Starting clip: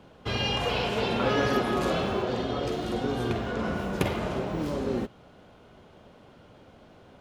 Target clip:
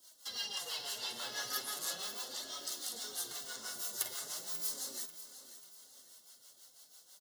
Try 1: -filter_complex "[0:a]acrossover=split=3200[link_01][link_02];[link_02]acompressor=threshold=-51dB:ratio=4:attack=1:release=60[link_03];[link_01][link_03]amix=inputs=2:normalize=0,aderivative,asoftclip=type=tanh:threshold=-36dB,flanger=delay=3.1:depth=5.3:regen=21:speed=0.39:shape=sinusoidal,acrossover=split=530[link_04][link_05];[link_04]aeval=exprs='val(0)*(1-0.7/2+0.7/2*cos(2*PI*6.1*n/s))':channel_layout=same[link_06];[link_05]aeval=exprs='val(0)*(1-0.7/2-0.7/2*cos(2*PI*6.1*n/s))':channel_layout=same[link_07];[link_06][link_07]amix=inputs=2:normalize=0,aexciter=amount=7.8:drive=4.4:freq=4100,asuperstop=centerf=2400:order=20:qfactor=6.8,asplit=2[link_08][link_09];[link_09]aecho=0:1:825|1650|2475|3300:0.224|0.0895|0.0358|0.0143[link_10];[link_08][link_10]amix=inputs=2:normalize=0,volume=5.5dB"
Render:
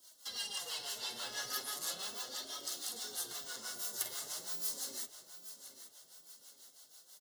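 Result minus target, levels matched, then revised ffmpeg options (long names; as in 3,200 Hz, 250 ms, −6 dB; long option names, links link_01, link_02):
soft clipping: distortion +18 dB; echo 285 ms late
-filter_complex "[0:a]acrossover=split=3200[link_01][link_02];[link_02]acompressor=threshold=-51dB:ratio=4:attack=1:release=60[link_03];[link_01][link_03]amix=inputs=2:normalize=0,aderivative,asoftclip=type=tanh:threshold=-25.5dB,flanger=delay=3.1:depth=5.3:regen=21:speed=0.39:shape=sinusoidal,acrossover=split=530[link_04][link_05];[link_04]aeval=exprs='val(0)*(1-0.7/2+0.7/2*cos(2*PI*6.1*n/s))':channel_layout=same[link_06];[link_05]aeval=exprs='val(0)*(1-0.7/2-0.7/2*cos(2*PI*6.1*n/s))':channel_layout=same[link_07];[link_06][link_07]amix=inputs=2:normalize=0,aexciter=amount=7.8:drive=4.4:freq=4100,asuperstop=centerf=2400:order=20:qfactor=6.8,asplit=2[link_08][link_09];[link_09]aecho=0:1:540|1080|1620|2160:0.224|0.0895|0.0358|0.0143[link_10];[link_08][link_10]amix=inputs=2:normalize=0,volume=5.5dB"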